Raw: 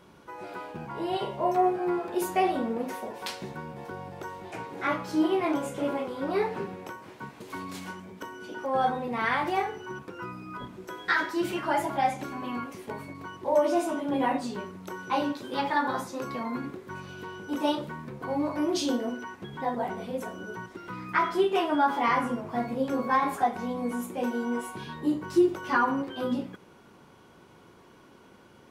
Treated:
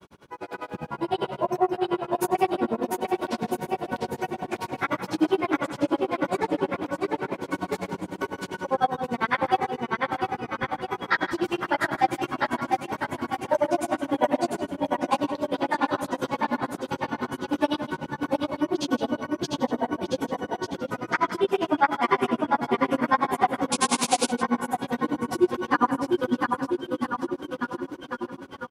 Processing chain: on a send: bouncing-ball echo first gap 0.69 s, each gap 0.9×, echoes 5; on the sum: AGC gain up to 4.5 dB; painted sound noise, 23.72–24.27, 2100–11000 Hz -25 dBFS; grains 75 ms, grains 10/s, spray 11 ms, pitch spread up and down by 0 st; in parallel at +1 dB: compressor, threshold -39 dBFS, peak gain reduction 21.5 dB; on the sum: outdoor echo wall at 29 m, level -14 dB

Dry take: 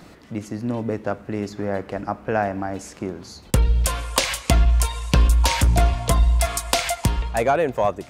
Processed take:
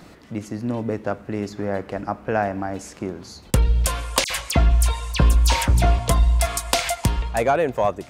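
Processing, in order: 4.24–5.99 dispersion lows, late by 62 ms, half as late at 2900 Hz

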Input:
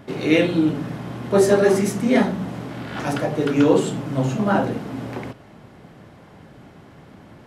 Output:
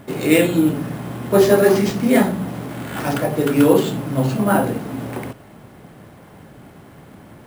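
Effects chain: careless resampling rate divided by 4×, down none, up hold; gain +2.5 dB

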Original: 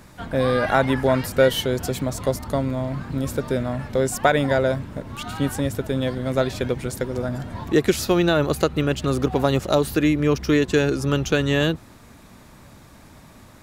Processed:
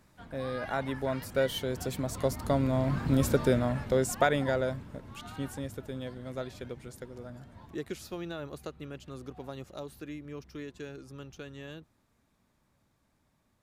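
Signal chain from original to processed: Doppler pass-by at 3.17, 5 m/s, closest 2.5 m

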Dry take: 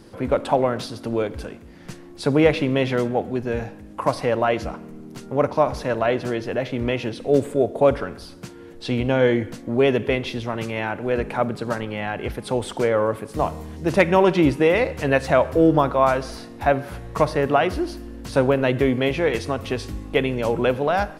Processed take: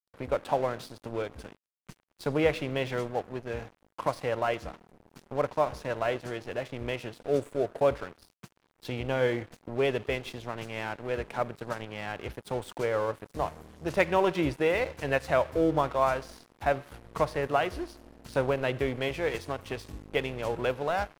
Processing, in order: dynamic EQ 230 Hz, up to -7 dB, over -34 dBFS, Q 1.5; crossover distortion -35.5 dBFS; gain -6.5 dB

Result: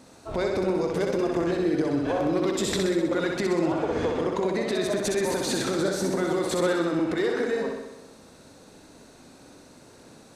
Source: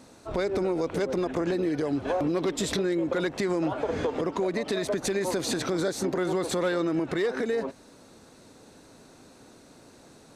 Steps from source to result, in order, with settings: flutter echo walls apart 10.9 m, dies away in 0.97 s

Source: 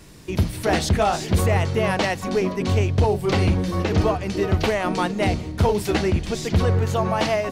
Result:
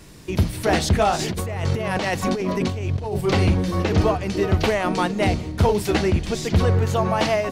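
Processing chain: 1.19–3.21 negative-ratio compressor -25 dBFS, ratio -1; gain +1 dB

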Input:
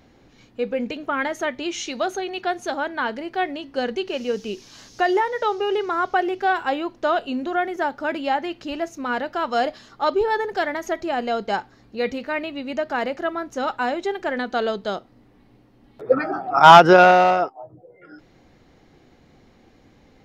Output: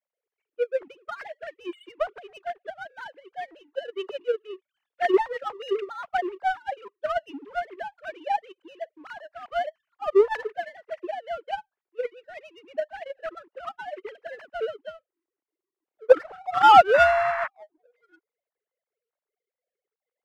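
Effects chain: sine-wave speech; power-law curve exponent 1.4; 16.93–17.46 band noise 890–2000 Hz -29 dBFS; gain -1.5 dB

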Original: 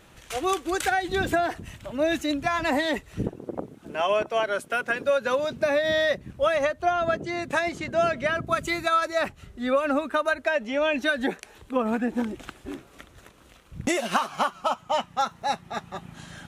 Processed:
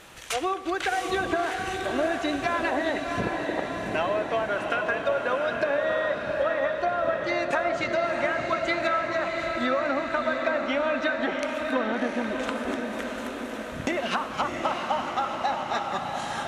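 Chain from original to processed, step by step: treble ducked by the level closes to 1700 Hz, closed at -20 dBFS; low shelf 310 Hz -10.5 dB; compressor, threshold -32 dBFS, peak gain reduction 12 dB; diffused feedback echo 0.695 s, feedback 64%, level -4 dB; reverb RT60 1.1 s, pre-delay 58 ms, DRR 15.5 dB; gain +7.5 dB

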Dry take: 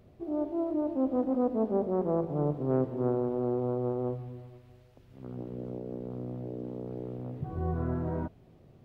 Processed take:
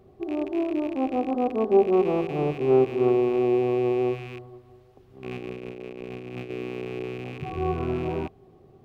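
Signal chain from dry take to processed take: rattling part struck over -43 dBFS, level -32 dBFS; small resonant body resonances 390/770/1100 Hz, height 13 dB, ringing for 50 ms; 5.26–6.5 negative-ratio compressor -36 dBFS, ratio -0.5

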